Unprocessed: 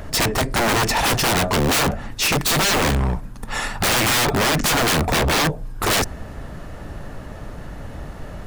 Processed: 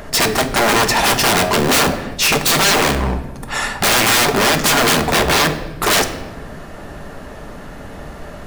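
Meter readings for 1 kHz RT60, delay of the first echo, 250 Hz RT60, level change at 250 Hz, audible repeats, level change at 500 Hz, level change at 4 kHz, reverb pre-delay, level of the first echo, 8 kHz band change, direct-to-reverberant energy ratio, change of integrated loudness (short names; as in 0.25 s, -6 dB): 1.0 s, none, 2.1 s, +3.5 dB, none, +5.0 dB, +5.0 dB, 3 ms, none, +5.0 dB, 7.0 dB, +4.5 dB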